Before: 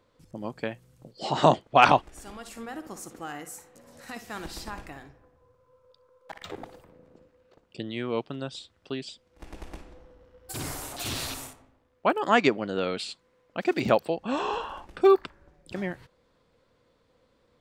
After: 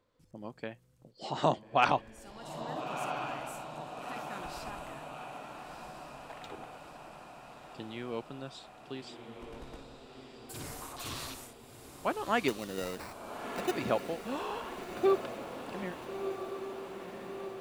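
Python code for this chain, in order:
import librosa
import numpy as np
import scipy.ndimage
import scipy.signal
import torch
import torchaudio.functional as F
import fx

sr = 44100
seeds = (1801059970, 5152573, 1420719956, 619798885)

y = fx.peak_eq(x, sr, hz=1100.0, db=fx.line((10.8, 13.5), (11.29, 7.0)), octaves=0.43, at=(10.8, 11.29), fade=0.02)
y = fx.sample_hold(y, sr, seeds[0], rate_hz=3300.0, jitter_pct=0, at=(12.48, 13.77))
y = fx.echo_diffused(y, sr, ms=1345, feedback_pct=64, wet_db=-7.5)
y = y * librosa.db_to_amplitude(-8.5)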